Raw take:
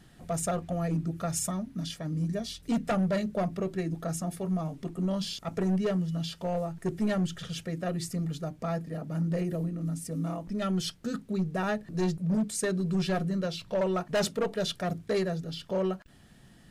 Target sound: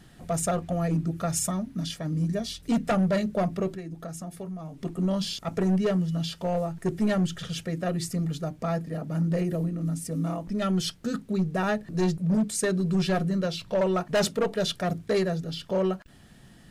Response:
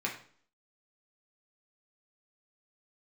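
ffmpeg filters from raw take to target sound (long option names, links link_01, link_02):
-filter_complex "[0:a]asplit=3[link_01][link_02][link_03];[link_01]afade=type=out:start_time=3.74:duration=0.02[link_04];[link_02]acompressor=threshold=-38dB:ratio=6,afade=type=in:start_time=3.74:duration=0.02,afade=type=out:start_time=4.81:duration=0.02[link_05];[link_03]afade=type=in:start_time=4.81:duration=0.02[link_06];[link_04][link_05][link_06]amix=inputs=3:normalize=0,volume=3.5dB"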